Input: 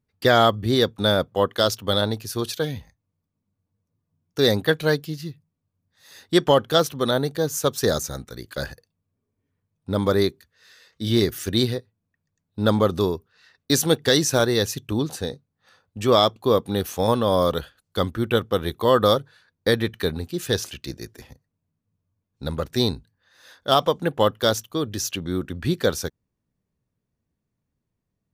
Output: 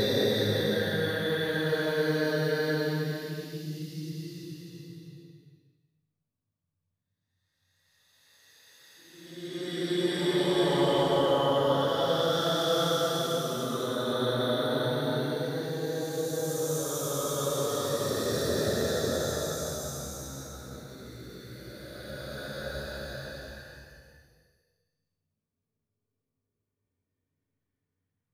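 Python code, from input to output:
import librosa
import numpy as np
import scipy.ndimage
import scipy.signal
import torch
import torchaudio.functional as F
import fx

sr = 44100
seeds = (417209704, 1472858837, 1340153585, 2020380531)

y = fx.paulstretch(x, sr, seeds[0], factor=5.5, window_s=0.5, from_s=4.47)
y = fx.rev_schroeder(y, sr, rt60_s=1.1, comb_ms=26, drr_db=7.5)
y = y * 10.0 ** (-7.5 / 20.0)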